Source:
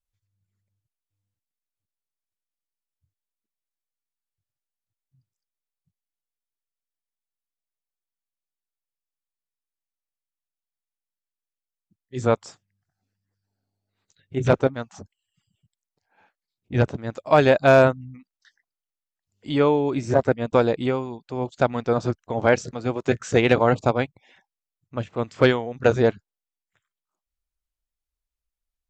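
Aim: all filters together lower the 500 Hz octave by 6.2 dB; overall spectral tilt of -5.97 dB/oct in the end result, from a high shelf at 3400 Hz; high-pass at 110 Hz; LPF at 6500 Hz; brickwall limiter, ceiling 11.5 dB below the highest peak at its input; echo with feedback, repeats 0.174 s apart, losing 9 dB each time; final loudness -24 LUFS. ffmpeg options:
-af "highpass=110,lowpass=6.5k,equalizer=f=500:t=o:g=-7.5,highshelf=f=3.4k:g=-5,alimiter=limit=-17dB:level=0:latency=1,aecho=1:1:174|348|522|696:0.355|0.124|0.0435|0.0152,volume=7dB"

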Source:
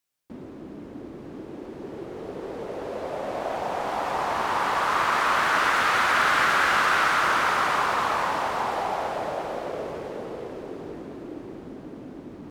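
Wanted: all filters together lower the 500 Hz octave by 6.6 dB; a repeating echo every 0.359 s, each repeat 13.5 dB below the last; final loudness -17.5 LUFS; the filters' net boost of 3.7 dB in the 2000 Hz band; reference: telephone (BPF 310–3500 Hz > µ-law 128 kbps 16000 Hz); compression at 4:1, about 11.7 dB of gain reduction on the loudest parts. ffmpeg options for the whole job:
-af "equalizer=f=500:t=o:g=-8.5,equalizer=f=2k:t=o:g=6,acompressor=threshold=-30dB:ratio=4,highpass=310,lowpass=3.5k,aecho=1:1:359|718:0.211|0.0444,volume=15dB" -ar 16000 -c:a pcm_mulaw

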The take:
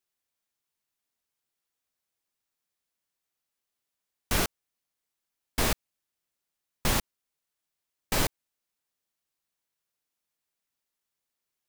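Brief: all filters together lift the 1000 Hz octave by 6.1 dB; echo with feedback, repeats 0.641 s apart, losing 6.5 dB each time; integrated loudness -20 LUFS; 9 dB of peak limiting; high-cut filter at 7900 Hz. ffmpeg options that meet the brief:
-af "lowpass=7.9k,equalizer=f=1k:t=o:g=7.5,alimiter=limit=-20dB:level=0:latency=1,aecho=1:1:641|1282|1923|2564|3205|3846:0.473|0.222|0.105|0.0491|0.0231|0.0109,volume=17dB"

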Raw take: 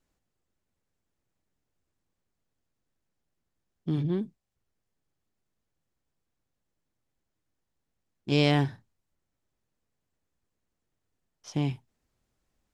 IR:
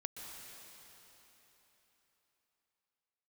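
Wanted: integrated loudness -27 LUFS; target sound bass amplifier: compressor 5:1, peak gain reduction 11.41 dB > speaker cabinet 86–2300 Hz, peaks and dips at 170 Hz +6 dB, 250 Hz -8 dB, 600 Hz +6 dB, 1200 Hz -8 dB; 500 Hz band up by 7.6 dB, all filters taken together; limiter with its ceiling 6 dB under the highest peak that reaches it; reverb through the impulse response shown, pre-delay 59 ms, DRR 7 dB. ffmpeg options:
-filter_complex "[0:a]equalizer=f=500:t=o:g=6.5,alimiter=limit=-14dB:level=0:latency=1,asplit=2[a][b];[1:a]atrim=start_sample=2205,adelay=59[c];[b][c]afir=irnorm=-1:irlink=0,volume=-5.5dB[d];[a][d]amix=inputs=2:normalize=0,acompressor=threshold=-32dB:ratio=5,highpass=f=86:w=0.5412,highpass=f=86:w=1.3066,equalizer=f=170:t=q:w=4:g=6,equalizer=f=250:t=q:w=4:g=-8,equalizer=f=600:t=q:w=4:g=6,equalizer=f=1.2k:t=q:w=4:g=-8,lowpass=f=2.3k:w=0.5412,lowpass=f=2.3k:w=1.3066,volume=12.5dB"

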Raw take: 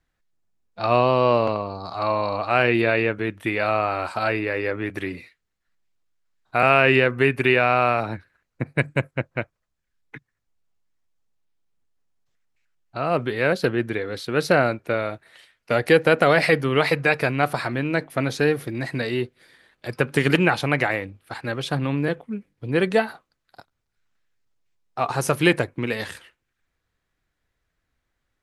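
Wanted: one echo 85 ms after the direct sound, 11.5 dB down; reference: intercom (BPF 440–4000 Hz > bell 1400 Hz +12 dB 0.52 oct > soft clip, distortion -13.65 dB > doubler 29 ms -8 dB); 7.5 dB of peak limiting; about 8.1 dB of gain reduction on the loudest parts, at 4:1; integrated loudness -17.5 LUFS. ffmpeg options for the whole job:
-filter_complex "[0:a]acompressor=threshold=-21dB:ratio=4,alimiter=limit=-14.5dB:level=0:latency=1,highpass=440,lowpass=4k,equalizer=f=1.4k:t=o:w=0.52:g=12,aecho=1:1:85:0.266,asoftclip=threshold=-19.5dB,asplit=2[a][b];[b]adelay=29,volume=-8dB[c];[a][c]amix=inputs=2:normalize=0,volume=10dB"

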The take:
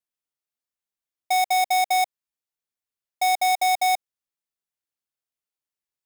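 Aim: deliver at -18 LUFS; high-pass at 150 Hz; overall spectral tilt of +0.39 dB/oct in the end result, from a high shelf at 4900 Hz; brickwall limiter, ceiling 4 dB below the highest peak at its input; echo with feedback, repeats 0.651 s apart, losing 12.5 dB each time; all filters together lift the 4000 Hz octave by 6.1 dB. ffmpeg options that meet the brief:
-af "highpass=150,equalizer=f=4k:t=o:g=4,highshelf=f=4.9k:g=6.5,alimiter=limit=-13dB:level=0:latency=1,aecho=1:1:651|1302|1953:0.237|0.0569|0.0137,volume=6.5dB"

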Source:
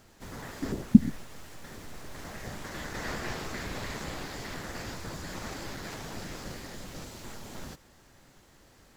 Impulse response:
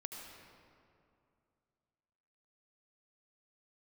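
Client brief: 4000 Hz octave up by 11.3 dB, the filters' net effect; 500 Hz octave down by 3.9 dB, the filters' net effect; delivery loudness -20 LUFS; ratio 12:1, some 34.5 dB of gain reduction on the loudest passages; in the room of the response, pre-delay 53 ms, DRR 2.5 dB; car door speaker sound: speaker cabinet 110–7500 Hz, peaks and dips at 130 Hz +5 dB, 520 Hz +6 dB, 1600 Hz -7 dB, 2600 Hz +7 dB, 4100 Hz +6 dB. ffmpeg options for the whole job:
-filter_complex "[0:a]equalizer=f=500:t=o:g=-8.5,equalizer=f=4k:t=o:g=9,acompressor=threshold=-46dB:ratio=12,asplit=2[a][b];[1:a]atrim=start_sample=2205,adelay=53[c];[b][c]afir=irnorm=-1:irlink=0,volume=-0.5dB[d];[a][d]amix=inputs=2:normalize=0,highpass=110,equalizer=f=130:t=q:w=4:g=5,equalizer=f=520:t=q:w=4:g=6,equalizer=f=1.6k:t=q:w=4:g=-7,equalizer=f=2.6k:t=q:w=4:g=7,equalizer=f=4.1k:t=q:w=4:g=6,lowpass=f=7.5k:w=0.5412,lowpass=f=7.5k:w=1.3066,volume=25.5dB"

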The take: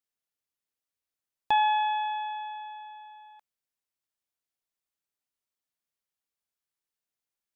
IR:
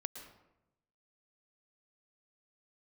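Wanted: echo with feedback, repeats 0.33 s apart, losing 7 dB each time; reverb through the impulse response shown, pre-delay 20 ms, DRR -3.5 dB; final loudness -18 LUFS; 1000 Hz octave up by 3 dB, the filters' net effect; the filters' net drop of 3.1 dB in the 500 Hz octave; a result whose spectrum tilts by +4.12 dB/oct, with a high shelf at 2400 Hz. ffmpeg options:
-filter_complex "[0:a]equalizer=f=500:t=o:g=-7.5,equalizer=f=1k:t=o:g=7,highshelf=f=2.4k:g=-5,aecho=1:1:330|660|990|1320|1650:0.447|0.201|0.0905|0.0407|0.0183,asplit=2[a][b];[1:a]atrim=start_sample=2205,adelay=20[c];[b][c]afir=irnorm=-1:irlink=0,volume=5.5dB[d];[a][d]amix=inputs=2:normalize=0"

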